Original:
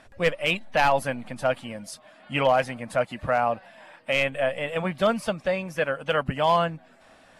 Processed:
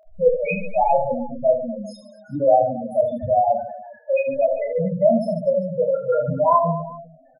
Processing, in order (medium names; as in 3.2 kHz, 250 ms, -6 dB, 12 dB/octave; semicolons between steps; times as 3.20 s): loudest bins only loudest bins 2; reverse bouncing-ball echo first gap 30 ms, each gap 1.5×, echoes 5; trim +8 dB